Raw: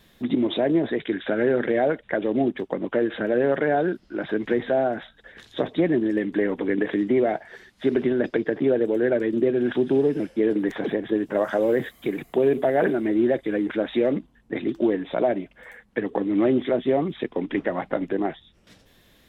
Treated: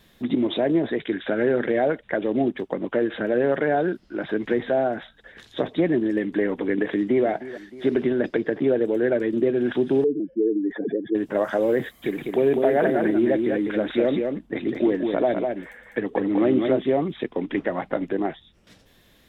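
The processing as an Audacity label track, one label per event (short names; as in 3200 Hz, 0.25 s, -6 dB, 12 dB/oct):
6.860000	7.260000	echo throw 0.31 s, feedback 60%, level -16 dB
10.040000	11.150000	spectral contrast raised exponent 2.3
11.840000	16.860000	echo 0.201 s -4.5 dB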